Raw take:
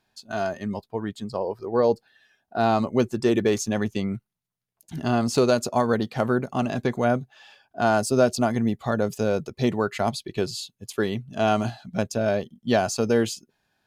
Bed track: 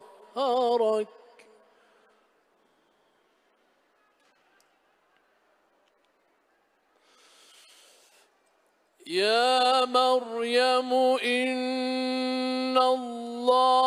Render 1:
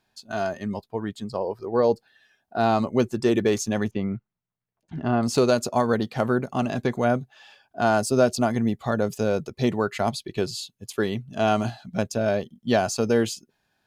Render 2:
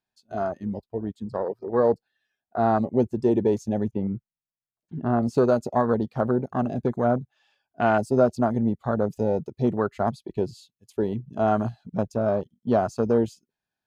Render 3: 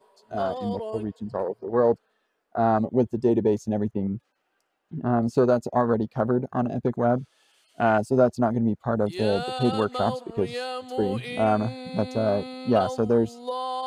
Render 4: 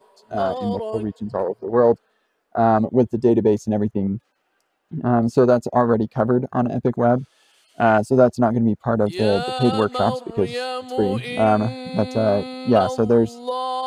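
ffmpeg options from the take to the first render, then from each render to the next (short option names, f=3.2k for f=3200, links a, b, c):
-filter_complex "[0:a]asettb=1/sr,asplit=3[a][b][c];[a]atrim=end=3.914[d];[b]atrim=start=3.91:end=5.23,asetpts=PTS-STARTPTS,afade=t=in:d=0.004:c=qsin,afade=t=out:st=1.316:d=0.004:c=qsin,lowpass=2.1k[e];[c]atrim=start=5.226[f];[d][e]acrossfade=d=0.004:c1=hsin:c2=qsin[g];[g][f]acrossfade=d=0.004:c1=qsin:c2=hsin"
-af "afwtdn=0.0501"
-filter_complex "[1:a]volume=-9dB[a];[0:a][a]amix=inputs=2:normalize=0"
-af "volume=5dB"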